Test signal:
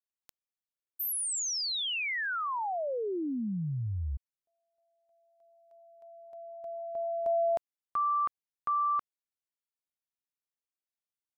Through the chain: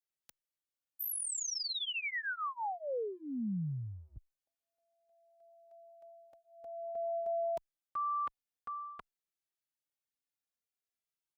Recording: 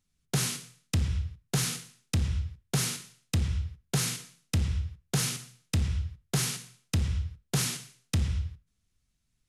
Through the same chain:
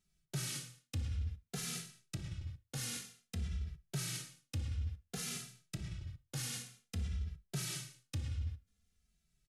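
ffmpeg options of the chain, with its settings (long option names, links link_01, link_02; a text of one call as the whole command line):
ffmpeg -i in.wav -filter_complex "[0:a]bandreject=frequency=1000:width=5.7,areverse,acompressor=threshold=-34dB:ratio=6:attack=0.98:release=188:knee=1:detection=rms,areverse,asplit=2[link_01][link_02];[link_02]adelay=2.6,afreqshift=-0.54[link_03];[link_01][link_03]amix=inputs=2:normalize=1,volume=1.5dB" out.wav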